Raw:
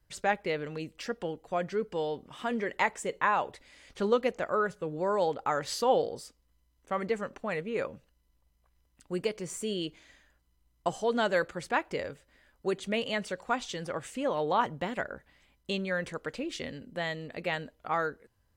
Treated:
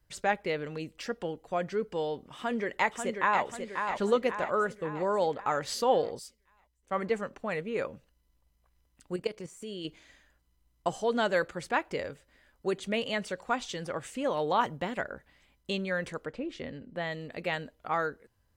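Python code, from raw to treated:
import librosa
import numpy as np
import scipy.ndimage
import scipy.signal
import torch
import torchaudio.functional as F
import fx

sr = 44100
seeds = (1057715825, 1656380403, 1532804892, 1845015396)

y = fx.echo_throw(x, sr, start_s=2.37, length_s=1.06, ms=540, feedback_pct=55, wet_db=-6.0)
y = fx.band_widen(y, sr, depth_pct=40, at=(6.19, 7.4))
y = fx.level_steps(y, sr, step_db=13, at=(9.16, 9.85))
y = fx.high_shelf(y, sr, hz=4300.0, db=5.5, at=(14.24, 14.77))
y = fx.lowpass(y, sr, hz=fx.line((16.24, 1100.0), (17.11, 2700.0)), slope=6, at=(16.24, 17.11), fade=0.02)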